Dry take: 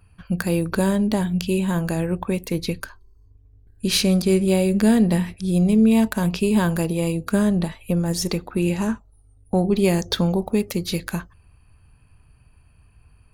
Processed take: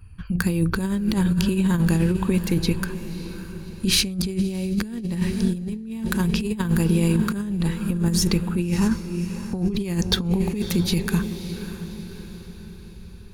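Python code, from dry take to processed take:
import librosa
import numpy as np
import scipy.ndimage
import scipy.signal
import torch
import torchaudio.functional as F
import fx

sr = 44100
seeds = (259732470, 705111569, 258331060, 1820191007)

y = fx.low_shelf(x, sr, hz=160.0, db=9.0)
y = fx.echo_diffused(y, sr, ms=595, feedback_pct=50, wet_db=-12.5)
y = fx.over_compress(y, sr, threshold_db=-19.0, ratio=-0.5)
y = fx.peak_eq(y, sr, hz=630.0, db=-13.0, octaves=0.58)
y = y * librosa.db_to_amplitude(-1.0)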